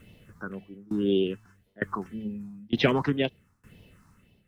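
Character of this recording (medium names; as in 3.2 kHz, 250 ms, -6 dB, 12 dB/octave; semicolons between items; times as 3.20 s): phasing stages 4, 1.9 Hz, lowest notch 500–1300 Hz; a quantiser's noise floor 12-bit, dither none; tremolo saw down 1.1 Hz, depth 95%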